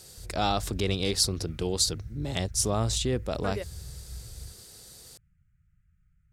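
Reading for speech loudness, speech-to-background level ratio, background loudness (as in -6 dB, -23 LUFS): -28.5 LUFS, 14.0 dB, -42.5 LUFS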